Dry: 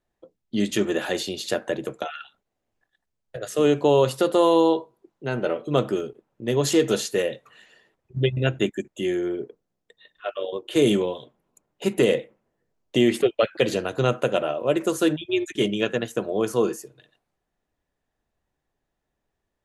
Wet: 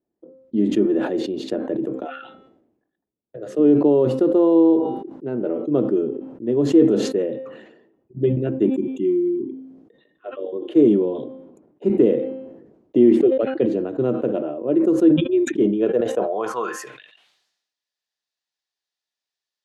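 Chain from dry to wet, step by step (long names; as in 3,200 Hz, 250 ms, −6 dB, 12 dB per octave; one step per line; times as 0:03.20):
healed spectral selection 0:08.76–0:09.54, 400–1,900 Hz after
hum removal 263.1 Hz, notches 16
band-pass filter sweep 300 Hz → 4,600 Hz, 0:15.72–0:17.46
level that may fall only so fast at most 58 dB per second
level +8 dB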